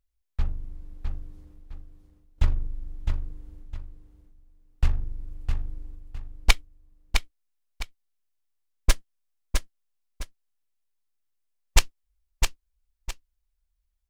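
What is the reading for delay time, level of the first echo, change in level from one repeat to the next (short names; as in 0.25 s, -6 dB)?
0.659 s, -5.5 dB, -11.0 dB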